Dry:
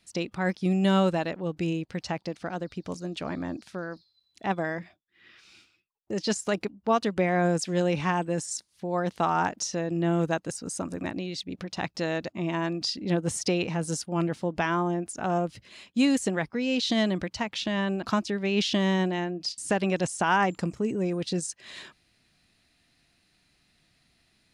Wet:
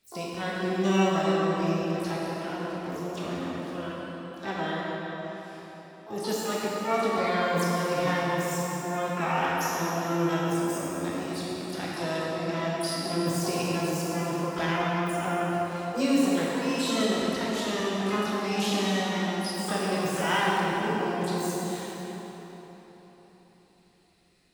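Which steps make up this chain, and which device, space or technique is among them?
shimmer-style reverb (pitch-shifted copies added +12 semitones −5 dB; convolution reverb RT60 4.3 s, pre-delay 11 ms, DRR −6 dB)
level −8 dB

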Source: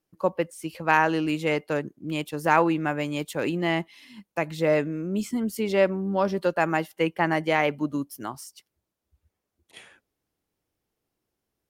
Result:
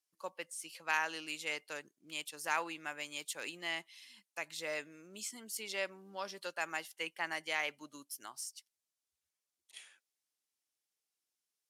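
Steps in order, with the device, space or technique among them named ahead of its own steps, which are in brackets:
piezo pickup straight into a mixer (low-pass filter 8,500 Hz 12 dB per octave; first difference)
level +2 dB

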